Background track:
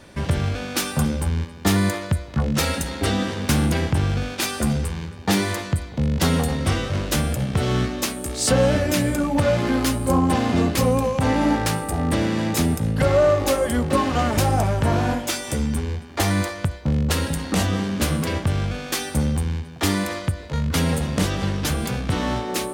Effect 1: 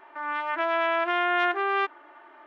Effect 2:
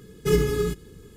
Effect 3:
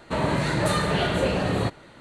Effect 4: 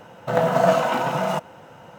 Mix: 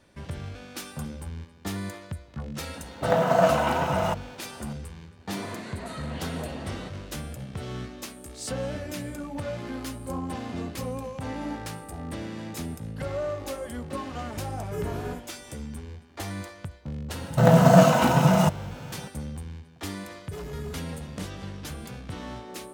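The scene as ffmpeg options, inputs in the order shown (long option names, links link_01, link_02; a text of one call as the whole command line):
ffmpeg -i bed.wav -i cue0.wav -i cue1.wav -i cue2.wav -i cue3.wav -filter_complex "[4:a]asplit=2[link_01][link_02];[2:a]asplit=2[link_03][link_04];[0:a]volume=-14dB[link_05];[3:a]afreqshift=72[link_06];[link_03]equalizer=frequency=4100:width_type=o:width=0.77:gain=-14[link_07];[link_02]bass=frequency=250:gain=14,treble=frequency=4000:gain=8[link_08];[link_04]asoftclip=type=hard:threshold=-22dB[link_09];[link_01]atrim=end=1.98,asetpts=PTS-STARTPTS,volume=-2.5dB,afade=type=in:duration=0.004:curve=hsin,afade=type=out:start_time=1.976:duration=0.004:curve=hsin,adelay=2750[link_10];[link_06]atrim=end=2,asetpts=PTS-STARTPTS,volume=-15dB,afade=type=in:duration=0.004:curve=hsin,afade=type=out:start_time=1.996:duration=0.004:curve=hsin,adelay=5200[link_11];[link_07]atrim=end=1.16,asetpts=PTS-STARTPTS,volume=-12.5dB,afade=type=in:duration=0.004:curve=hsin,afade=type=out:start_time=1.156:duration=0.004:curve=hsin,adelay=14460[link_12];[link_08]atrim=end=1.98,asetpts=PTS-STARTPTS,volume=-0.5dB,afade=type=in:duration=0.004:curve=hsin,afade=type=out:start_time=1.976:duration=0.004:curve=hsin,adelay=17100[link_13];[link_09]atrim=end=1.16,asetpts=PTS-STARTPTS,volume=-13dB,afade=type=in:duration=0.004:curve=hsin,afade=type=out:start_time=1.156:duration=0.004:curve=hsin,adelay=20060[link_14];[link_05][link_10][link_11][link_12][link_13][link_14]amix=inputs=6:normalize=0" out.wav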